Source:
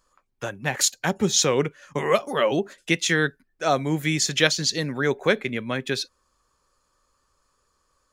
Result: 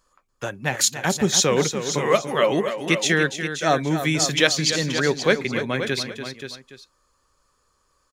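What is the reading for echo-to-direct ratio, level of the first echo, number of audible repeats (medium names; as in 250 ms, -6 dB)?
-7.0 dB, -10.0 dB, 3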